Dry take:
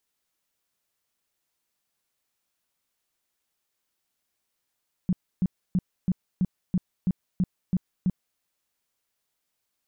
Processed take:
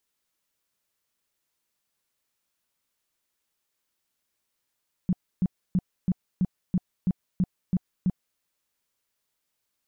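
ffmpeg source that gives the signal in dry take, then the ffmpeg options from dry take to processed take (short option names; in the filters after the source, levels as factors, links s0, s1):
-f lavfi -i "aevalsrc='0.112*sin(2*PI*183*mod(t,0.33))*lt(mod(t,0.33),7/183)':d=3.3:s=44100"
-af "bandreject=f=740:w=12"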